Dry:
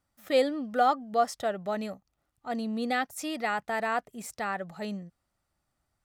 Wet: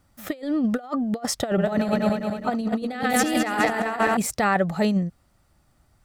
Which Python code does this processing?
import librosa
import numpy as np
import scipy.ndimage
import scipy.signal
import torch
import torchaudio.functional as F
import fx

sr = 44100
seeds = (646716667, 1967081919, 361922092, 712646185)

y = fx.reverse_delay_fb(x, sr, ms=104, feedback_pct=73, wet_db=-5.5, at=(1.47, 4.17))
y = fx.low_shelf(y, sr, hz=340.0, db=6.5)
y = fx.over_compress(y, sr, threshold_db=-31.0, ratio=-0.5)
y = F.gain(torch.from_numpy(y), 8.5).numpy()